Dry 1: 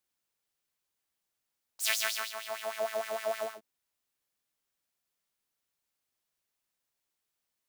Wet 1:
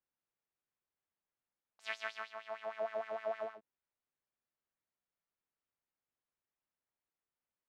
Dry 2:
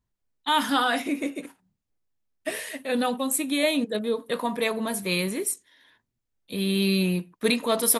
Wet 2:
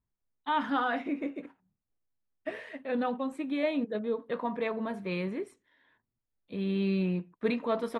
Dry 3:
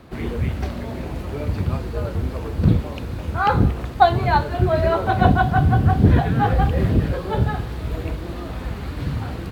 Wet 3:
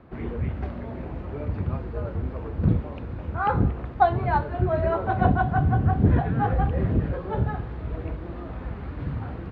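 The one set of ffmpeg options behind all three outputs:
-af "lowpass=1900,volume=-5dB"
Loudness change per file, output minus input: −9.0, −6.5, −5.0 LU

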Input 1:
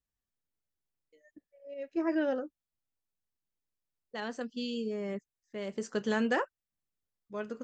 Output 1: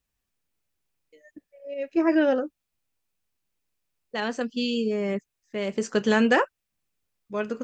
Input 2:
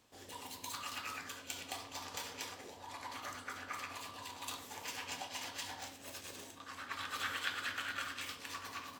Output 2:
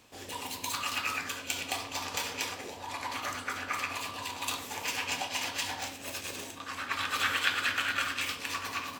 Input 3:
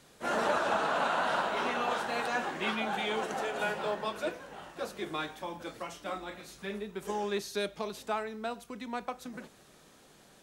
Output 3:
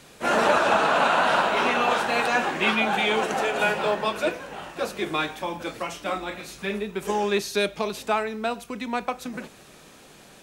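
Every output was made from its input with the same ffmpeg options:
-af "equalizer=frequency=2500:width=4.6:gain=5,volume=9dB"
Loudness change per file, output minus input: +9.0, +10.0, +9.5 LU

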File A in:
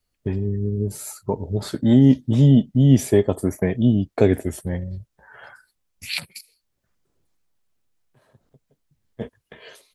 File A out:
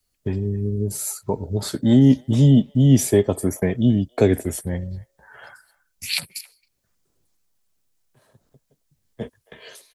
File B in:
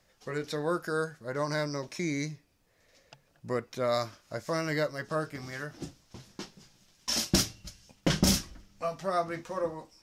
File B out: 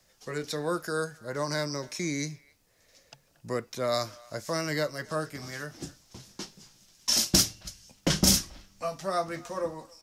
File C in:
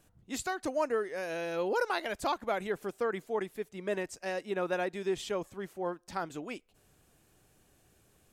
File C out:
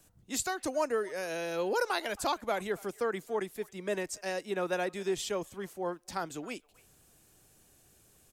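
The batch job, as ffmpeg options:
-filter_complex "[0:a]acrossover=split=270|510|4400[link_01][link_02][link_03][link_04];[link_03]aecho=1:1:272:0.0891[link_05];[link_04]acontrast=88[link_06];[link_01][link_02][link_05][link_06]amix=inputs=4:normalize=0"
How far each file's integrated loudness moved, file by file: 0.0, +2.5, +0.5 LU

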